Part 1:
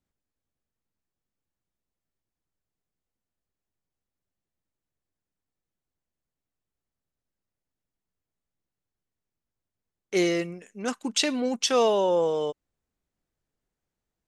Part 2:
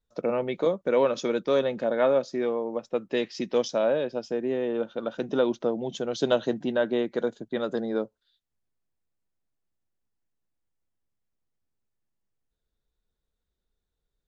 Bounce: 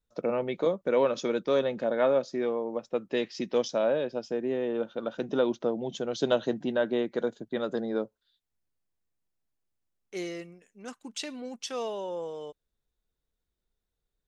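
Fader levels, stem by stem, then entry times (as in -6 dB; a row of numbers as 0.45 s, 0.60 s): -12.0 dB, -2.0 dB; 0.00 s, 0.00 s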